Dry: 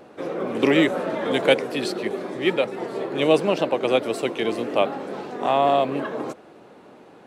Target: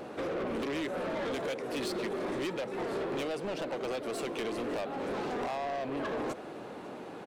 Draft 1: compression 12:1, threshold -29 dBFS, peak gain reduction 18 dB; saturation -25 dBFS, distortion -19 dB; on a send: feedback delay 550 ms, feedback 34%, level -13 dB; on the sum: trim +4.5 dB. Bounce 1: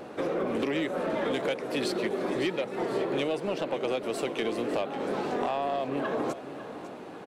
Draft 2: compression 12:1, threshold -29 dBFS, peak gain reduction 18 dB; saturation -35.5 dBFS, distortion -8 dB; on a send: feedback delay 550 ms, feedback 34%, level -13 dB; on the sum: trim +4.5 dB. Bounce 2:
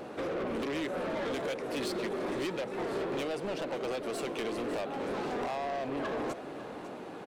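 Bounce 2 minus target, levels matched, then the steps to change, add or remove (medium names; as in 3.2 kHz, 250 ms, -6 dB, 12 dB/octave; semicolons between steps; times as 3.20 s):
echo-to-direct +8.5 dB
change: feedback delay 550 ms, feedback 34%, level -21.5 dB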